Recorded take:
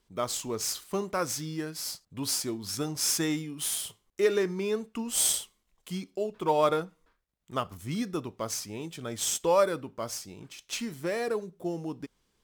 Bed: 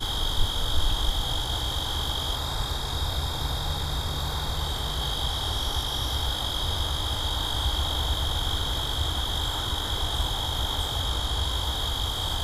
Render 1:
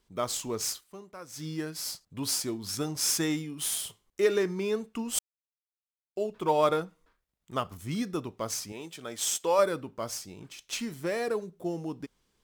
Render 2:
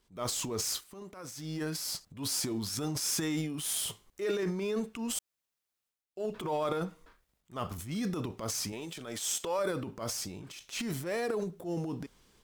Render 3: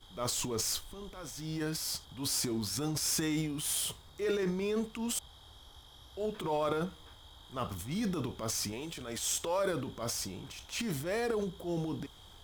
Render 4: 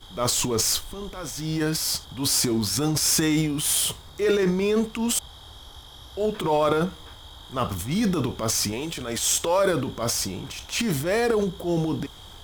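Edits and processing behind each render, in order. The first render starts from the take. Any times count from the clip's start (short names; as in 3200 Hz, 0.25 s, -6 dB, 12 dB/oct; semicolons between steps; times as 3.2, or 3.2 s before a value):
0.68–1.46 dip -15 dB, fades 0.14 s; 5.19–6.16 mute; 8.72–9.59 HPF 400 Hz 6 dB/oct
compressor 6:1, threshold -28 dBFS, peak gain reduction 9.5 dB; transient shaper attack -9 dB, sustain +9 dB
add bed -27 dB
gain +10.5 dB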